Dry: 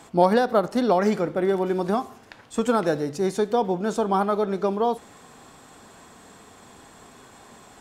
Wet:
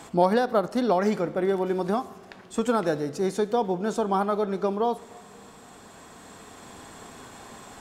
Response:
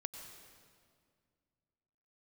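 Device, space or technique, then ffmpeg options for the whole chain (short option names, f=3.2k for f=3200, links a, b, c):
ducked reverb: -filter_complex "[0:a]asplit=3[a][b][c];[1:a]atrim=start_sample=2205[d];[b][d]afir=irnorm=-1:irlink=0[e];[c]apad=whole_len=344334[f];[e][f]sidechaincompress=threshold=-35dB:ratio=8:attack=16:release=1430,volume=5dB[g];[a][g]amix=inputs=2:normalize=0,volume=-3.5dB"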